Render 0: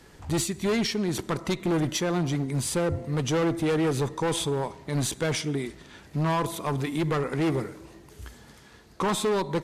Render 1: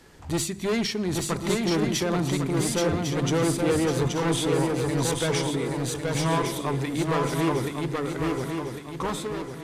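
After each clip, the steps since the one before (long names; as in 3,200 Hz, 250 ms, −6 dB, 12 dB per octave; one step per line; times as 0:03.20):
fade-out on the ending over 0.85 s
mains-hum notches 50/100/150/200 Hz
feedback echo with a long and a short gap by turns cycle 1,103 ms, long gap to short 3 to 1, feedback 41%, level −3 dB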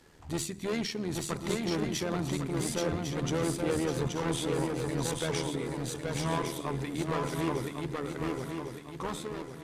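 amplitude modulation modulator 79 Hz, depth 35%
level −4.5 dB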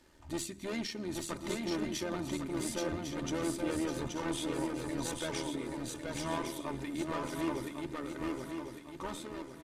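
comb filter 3.3 ms, depth 52%
level −5 dB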